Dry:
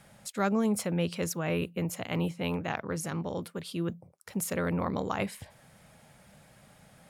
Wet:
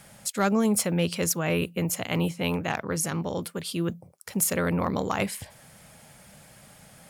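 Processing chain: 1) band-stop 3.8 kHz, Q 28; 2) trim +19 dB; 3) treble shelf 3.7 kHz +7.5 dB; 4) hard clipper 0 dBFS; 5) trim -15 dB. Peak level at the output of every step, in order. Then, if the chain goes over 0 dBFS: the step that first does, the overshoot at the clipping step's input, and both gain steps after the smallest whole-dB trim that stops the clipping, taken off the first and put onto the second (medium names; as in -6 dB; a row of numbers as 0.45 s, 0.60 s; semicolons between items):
-14.0 dBFS, +5.0 dBFS, +6.5 dBFS, 0.0 dBFS, -15.0 dBFS; step 2, 6.5 dB; step 2 +12 dB, step 5 -8 dB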